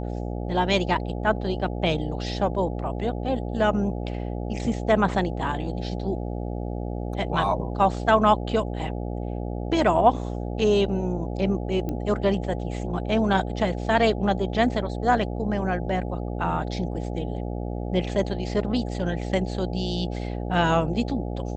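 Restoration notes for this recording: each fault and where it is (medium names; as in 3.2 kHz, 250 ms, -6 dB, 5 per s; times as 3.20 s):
buzz 60 Hz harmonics 14 -30 dBFS
11.89 s: pop -18 dBFS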